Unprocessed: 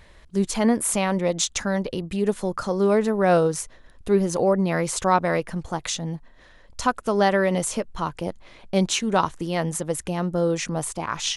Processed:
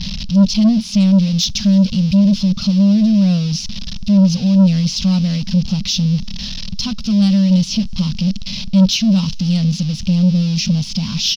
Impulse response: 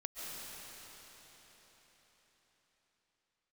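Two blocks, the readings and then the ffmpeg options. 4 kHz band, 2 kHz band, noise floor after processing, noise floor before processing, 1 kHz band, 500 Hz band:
+11.5 dB, -4.0 dB, -25 dBFS, -51 dBFS, -13.0 dB, -9.0 dB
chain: -filter_complex "[0:a]aeval=exprs='val(0)+0.5*0.0944*sgn(val(0))':c=same,firequalizer=gain_entry='entry(130,0);entry(200,13);entry(340,-28);entry(610,-20);entry(1800,-21);entry(2700,-1);entry(5300,8);entry(8000,-29)':delay=0.05:min_phase=1,acontrast=80,asplit=2[a][b];[b]aderivative[c];[1:a]atrim=start_sample=2205,adelay=46[d];[c][d]afir=irnorm=-1:irlink=0,volume=-20dB[e];[a][e]amix=inputs=2:normalize=0,volume=-4dB"

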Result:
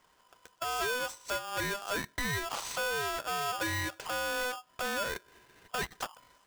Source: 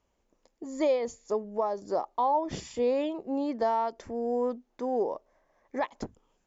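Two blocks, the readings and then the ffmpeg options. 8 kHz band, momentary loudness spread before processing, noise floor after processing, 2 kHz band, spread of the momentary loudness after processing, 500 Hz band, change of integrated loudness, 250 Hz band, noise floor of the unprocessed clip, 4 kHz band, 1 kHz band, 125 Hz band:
n/a, 11 LU, -67 dBFS, +14.0 dB, 6 LU, -9.5 dB, -3.5 dB, -10.5 dB, -75 dBFS, +11.5 dB, -5.0 dB, +6.0 dB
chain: -af "acompressor=threshold=-38dB:ratio=5,asoftclip=type=tanh:threshold=-37dB,aeval=exprs='0.0141*(cos(1*acos(clip(val(0)/0.0141,-1,1)))-cos(1*PI/2))+0.002*(cos(4*acos(clip(val(0)/0.0141,-1,1)))-cos(4*PI/2))':c=same,aeval=exprs='val(0)*sgn(sin(2*PI*1000*n/s))':c=same,volume=8.5dB"

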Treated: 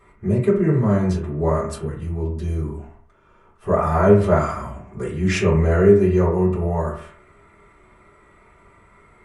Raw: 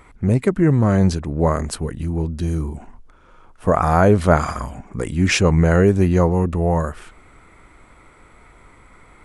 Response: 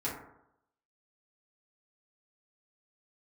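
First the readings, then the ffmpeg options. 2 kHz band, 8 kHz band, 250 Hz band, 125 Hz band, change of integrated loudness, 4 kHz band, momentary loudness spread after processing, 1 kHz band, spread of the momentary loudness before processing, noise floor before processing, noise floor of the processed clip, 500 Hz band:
-4.5 dB, -8.0 dB, -2.0 dB, -2.5 dB, -1.0 dB, -8.0 dB, 16 LU, -3.5 dB, 12 LU, -50 dBFS, -54 dBFS, +1.0 dB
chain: -filter_complex "[1:a]atrim=start_sample=2205,asetrate=61740,aresample=44100[a];[0:a][a]afir=irnorm=-1:irlink=0,volume=-6dB"

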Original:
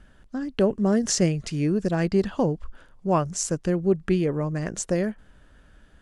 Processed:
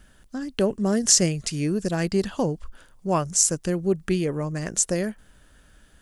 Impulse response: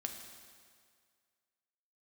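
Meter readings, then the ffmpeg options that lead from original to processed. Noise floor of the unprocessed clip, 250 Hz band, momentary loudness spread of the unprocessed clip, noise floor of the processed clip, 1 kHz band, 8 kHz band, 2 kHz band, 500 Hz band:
-55 dBFS, -1.5 dB, 9 LU, -56 dBFS, -1.0 dB, +9.0 dB, +1.0 dB, -1.5 dB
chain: -af "aemphasis=mode=production:type=75kf,volume=-1.5dB"

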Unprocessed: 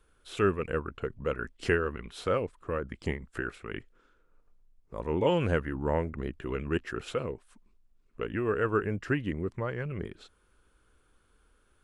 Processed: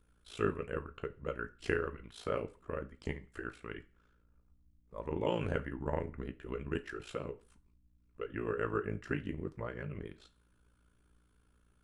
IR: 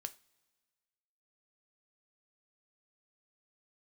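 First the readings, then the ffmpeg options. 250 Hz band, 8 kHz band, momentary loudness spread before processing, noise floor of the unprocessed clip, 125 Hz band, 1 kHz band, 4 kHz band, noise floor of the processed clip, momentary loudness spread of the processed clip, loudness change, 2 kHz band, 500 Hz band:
-7.0 dB, n/a, 12 LU, -67 dBFS, -7.5 dB, -7.0 dB, -7.5 dB, -70 dBFS, 11 LU, -7.0 dB, -7.0 dB, -7.0 dB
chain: -filter_complex "[0:a]tremolo=f=56:d=0.919,aeval=exprs='val(0)+0.000447*(sin(2*PI*60*n/s)+sin(2*PI*2*60*n/s)/2+sin(2*PI*3*60*n/s)/3+sin(2*PI*4*60*n/s)/4+sin(2*PI*5*60*n/s)/5)':c=same[a];[1:a]atrim=start_sample=2205,afade=t=out:st=0.25:d=0.01,atrim=end_sample=11466,asetrate=43659,aresample=44100[b];[a][b]afir=irnorm=-1:irlink=0"

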